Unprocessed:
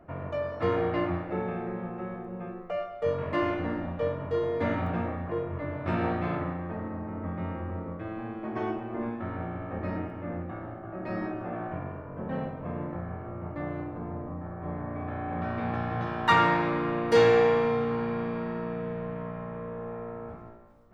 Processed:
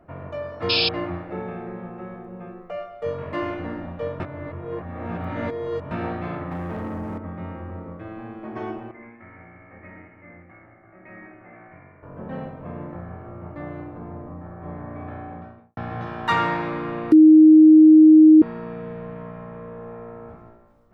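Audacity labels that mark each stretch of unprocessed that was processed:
0.690000	0.890000	painted sound noise 2.3–5.3 kHz -21 dBFS
4.200000	5.910000	reverse
6.510000	7.180000	waveshaping leveller passes 2
8.910000	12.030000	four-pole ladder low-pass 2.2 kHz, resonance 85%
15.040000	15.770000	studio fade out
17.120000	18.420000	bleep 312 Hz -6.5 dBFS

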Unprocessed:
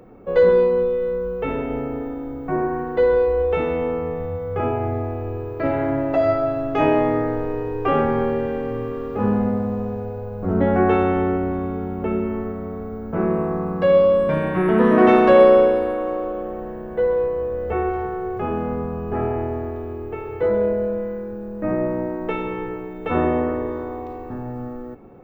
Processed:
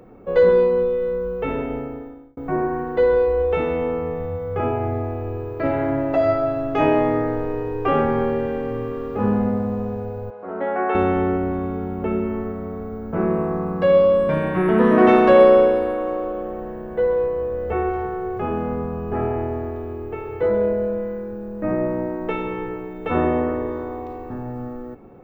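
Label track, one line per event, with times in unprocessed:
1.620000	2.370000	fade out
10.300000	10.950000	band-pass 550–2600 Hz

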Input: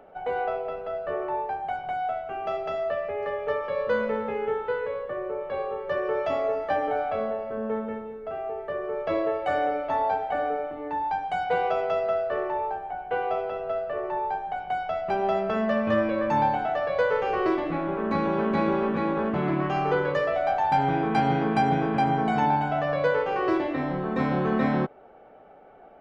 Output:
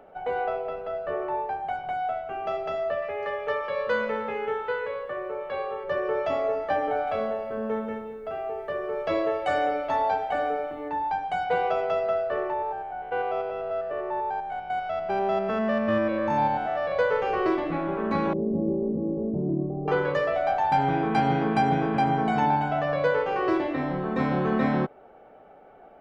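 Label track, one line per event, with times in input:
3.020000	5.840000	tilt shelf lows -4.5 dB, about 740 Hz
7.070000	10.890000	treble shelf 3.7 kHz +10 dB
12.530000	16.920000	spectrogram pixelated in time every 100 ms
18.330000	19.880000	inverse Chebyshev low-pass stop band from 1.7 kHz, stop band 60 dB

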